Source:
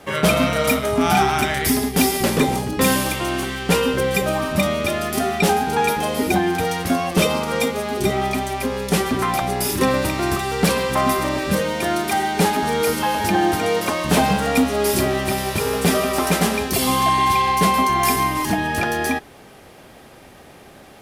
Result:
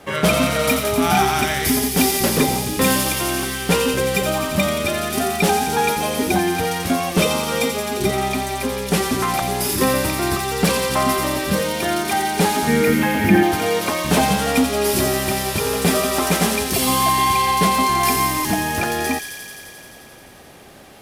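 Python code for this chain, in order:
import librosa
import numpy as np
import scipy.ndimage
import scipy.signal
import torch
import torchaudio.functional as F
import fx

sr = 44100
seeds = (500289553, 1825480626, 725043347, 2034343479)

y = fx.graphic_eq_10(x, sr, hz=(125, 250, 1000, 2000, 4000, 8000), db=(7, 10, -7, 11, -8, -11), at=(12.67, 13.43))
y = fx.echo_wet_highpass(y, sr, ms=87, feedback_pct=82, hz=3700.0, wet_db=-3.5)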